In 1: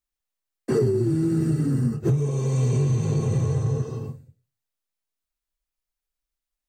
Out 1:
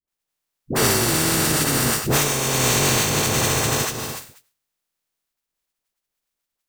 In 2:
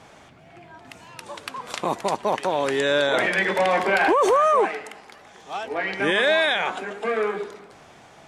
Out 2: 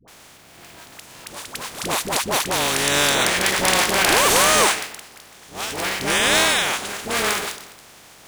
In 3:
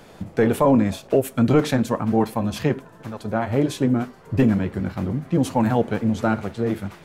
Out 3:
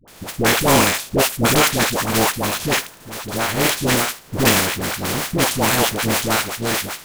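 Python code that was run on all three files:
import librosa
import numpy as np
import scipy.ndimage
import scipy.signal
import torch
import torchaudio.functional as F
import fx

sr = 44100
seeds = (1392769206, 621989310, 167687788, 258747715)

y = fx.spec_flatten(x, sr, power=0.32)
y = fx.dispersion(y, sr, late='highs', ms=79.0, hz=620.0)
y = y * 10.0 ** (2.5 / 20.0)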